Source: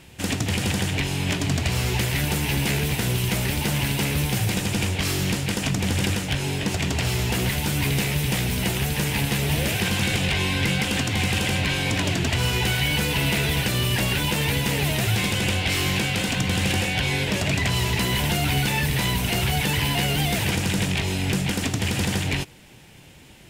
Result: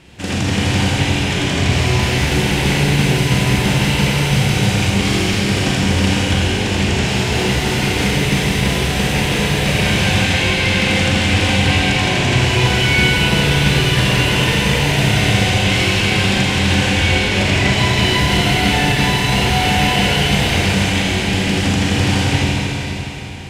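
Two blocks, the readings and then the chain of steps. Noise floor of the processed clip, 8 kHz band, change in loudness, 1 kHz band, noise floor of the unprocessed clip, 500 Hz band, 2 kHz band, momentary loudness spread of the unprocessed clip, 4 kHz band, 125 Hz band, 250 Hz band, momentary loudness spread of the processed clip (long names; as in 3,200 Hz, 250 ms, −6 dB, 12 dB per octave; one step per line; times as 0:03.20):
−20 dBFS, +4.5 dB, +8.0 dB, +10.0 dB, −46 dBFS, +9.5 dB, +9.0 dB, 3 LU, +8.5 dB, +7.5 dB, +8.5 dB, 3 LU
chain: high-frequency loss of the air 54 metres
four-comb reverb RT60 3.8 s, combs from 31 ms, DRR −6 dB
level +2.5 dB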